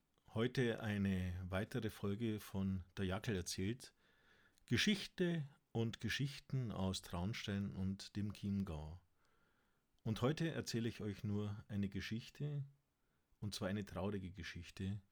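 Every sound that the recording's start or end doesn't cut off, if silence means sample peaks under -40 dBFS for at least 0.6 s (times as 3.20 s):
4.68–8.76 s
10.06–12.61 s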